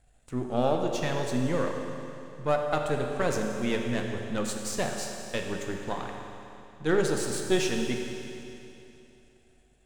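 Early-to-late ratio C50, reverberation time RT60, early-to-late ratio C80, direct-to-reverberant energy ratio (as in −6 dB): 3.0 dB, 2.9 s, 4.0 dB, 2.0 dB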